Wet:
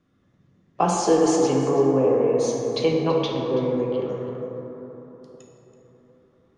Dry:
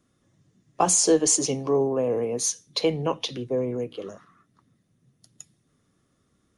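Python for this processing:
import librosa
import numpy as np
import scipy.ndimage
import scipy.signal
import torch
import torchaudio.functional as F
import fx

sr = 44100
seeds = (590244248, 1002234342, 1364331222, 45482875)

y = scipy.signal.sosfilt(scipy.signal.butter(2, 3600.0, 'lowpass', fs=sr, output='sos'), x)
y = y + 10.0 ** (-15.0 / 20.0) * np.pad(y, (int(330 * sr / 1000.0), 0))[:len(y)]
y = fx.rev_plate(y, sr, seeds[0], rt60_s=4.0, hf_ratio=0.3, predelay_ms=0, drr_db=-1.5)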